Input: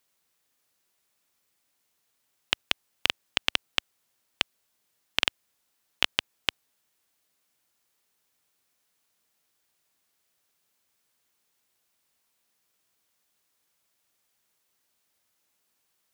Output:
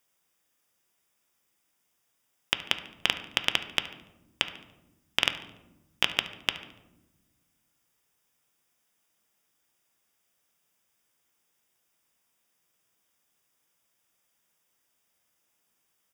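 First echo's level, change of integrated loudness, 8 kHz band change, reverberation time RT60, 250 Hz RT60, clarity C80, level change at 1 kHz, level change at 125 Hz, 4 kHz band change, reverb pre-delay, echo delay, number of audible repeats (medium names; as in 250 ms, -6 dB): -18.5 dB, 0.0 dB, 0.0 dB, 1.0 s, 2.1 s, 14.0 dB, +0.5 dB, +1.5 dB, 0.0 dB, 4 ms, 72 ms, 1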